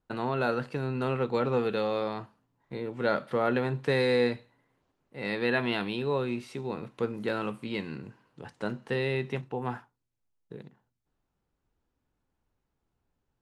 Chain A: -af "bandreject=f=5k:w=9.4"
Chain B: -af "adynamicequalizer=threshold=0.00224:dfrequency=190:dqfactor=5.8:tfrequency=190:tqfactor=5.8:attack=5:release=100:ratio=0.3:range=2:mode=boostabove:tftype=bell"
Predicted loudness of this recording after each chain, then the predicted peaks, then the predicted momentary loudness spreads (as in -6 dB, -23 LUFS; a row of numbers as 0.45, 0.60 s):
-30.5, -30.5 LUFS; -13.0, -13.0 dBFS; 16, 15 LU